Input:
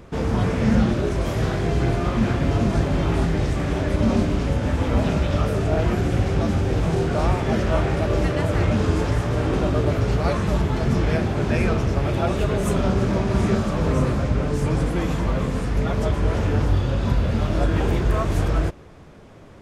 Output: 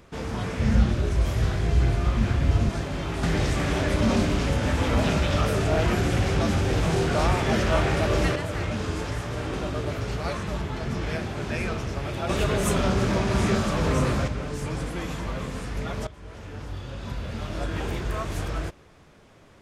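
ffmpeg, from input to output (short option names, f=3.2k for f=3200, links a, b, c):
-filter_complex "[0:a]asettb=1/sr,asplit=3[a][b][c];[a]atrim=end=0.594[d];[b]atrim=start=0.59:end=2.69,asetpts=PTS-STARTPTS,afade=t=in:d=0.004:c=qsin,afade=t=out:st=2.096:d=0.004:c=qsin,equalizer=f=64:w=0.78:g=14[e];[c]atrim=start=2.686[f];[d][e]acrossfade=d=0.004:c1=hsin:c2=qsin[g];[g][f]acrossfade=d=0.004:c1=qsin:c2=hsin,asettb=1/sr,asplit=3[h][i][j];[h]atrim=end=3.234[k];[i]atrim=start=3.23:end=8.36,asetpts=PTS-STARTPTS,afade=t=in:d=0.004:c=qsin,afade=t=out:st=5.126:d=0.004:c=qsin,acontrast=88[l];[j]atrim=start=8.356[m];[k][l]acrossfade=d=0.004:c1=hsin:c2=qsin[n];[n][m]acrossfade=d=0.004:c1=qsin:c2=hsin,asettb=1/sr,asplit=3[o][p][q];[o]atrim=end=10.434[r];[p]atrim=start=10.43:end=11.02,asetpts=PTS-STARTPTS,afade=t=in:d=0.004:c=qsin,afade=t=out:st=0.586:d=0.004:c=qsin,highshelf=f=5.3k:g=-5[s];[q]atrim=start=11.016[t];[r][s]acrossfade=d=0.004:c1=hsin:c2=qsin[u];[u][t]acrossfade=d=0.004:c1=qsin:c2=hsin,asettb=1/sr,asplit=3[v][w][x];[v]atrim=end=12.294[y];[w]atrim=start=12.29:end=14.28,asetpts=PTS-STARTPTS,afade=t=in:d=0.004:c=qsin,afade=t=out:st=1.986:d=0.004:c=qsin,acontrast=70[z];[x]atrim=start=14.276[aa];[y][z]acrossfade=d=0.004:c1=hsin:c2=qsin[ab];[ab][aa]acrossfade=d=0.004:c1=qsin:c2=hsin,asplit=2[ac][ad];[ac]atrim=end=16.07,asetpts=PTS-STARTPTS,afade=t=out:st=16.066:d=0.004:c=hsin:silence=0.141254[ae];[ad]atrim=start=16.07,asetpts=PTS-STARTPTS,afade=t=in:d=1.73:silence=0.141254[af];[ae][af]concat=n=2:v=0:a=1,tiltshelf=f=1.1k:g=-4,volume=-5.5dB"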